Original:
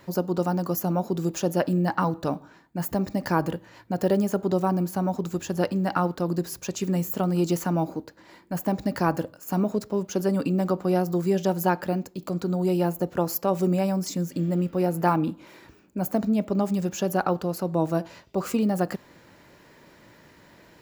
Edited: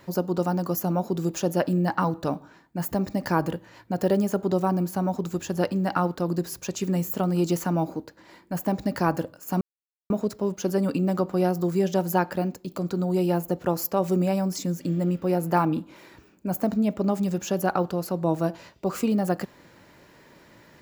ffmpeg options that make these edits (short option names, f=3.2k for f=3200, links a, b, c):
-filter_complex "[0:a]asplit=2[a][b];[a]atrim=end=9.61,asetpts=PTS-STARTPTS,afade=t=out:st=9.606:d=0.004:c=hsin,apad=pad_dur=0.49[c];[b]atrim=start=9.61,asetpts=PTS-STARTPTS,afade=t=in:d=0.004:c=hsin[d];[c][d]concat=n=2:v=0:a=1"